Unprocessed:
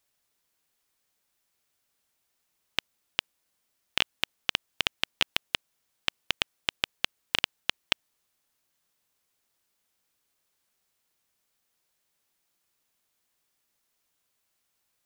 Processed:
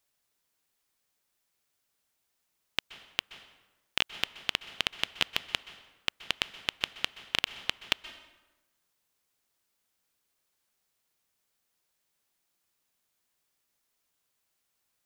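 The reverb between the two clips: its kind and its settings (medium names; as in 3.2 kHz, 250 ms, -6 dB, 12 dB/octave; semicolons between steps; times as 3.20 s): plate-style reverb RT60 1.1 s, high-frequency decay 0.7×, pre-delay 115 ms, DRR 13.5 dB; trim -2 dB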